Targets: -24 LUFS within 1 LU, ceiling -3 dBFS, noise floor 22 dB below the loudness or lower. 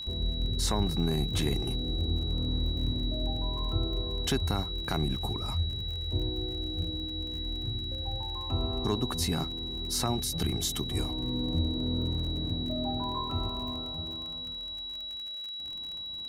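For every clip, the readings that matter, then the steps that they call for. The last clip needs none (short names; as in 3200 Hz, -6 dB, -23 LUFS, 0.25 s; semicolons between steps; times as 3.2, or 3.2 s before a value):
ticks 41/s; steady tone 3900 Hz; tone level -36 dBFS; loudness -31.5 LUFS; peak -14.5 dBFS; loudness target -24.0 LUFS
-> de-click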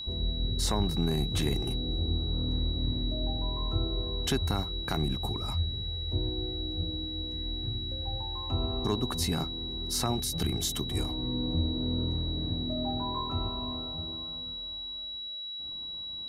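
ticks 0/s; steady tone 3900 Hz; tone level -36 dBFS
-> notch 3900 Hz, Q 30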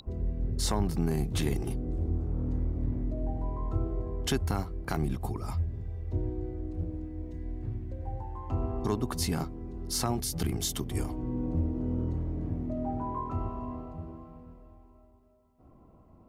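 steady tone none; loudness -33.0 LUFS; peak -15.5 dBFS; loudness target -24.0 LUFS
-> gain +9 dB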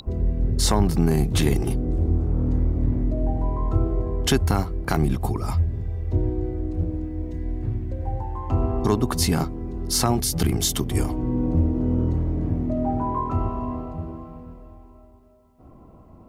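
loudness -24.0 LUFS; peak -6.5 dBFS; noise floor -49 dBFS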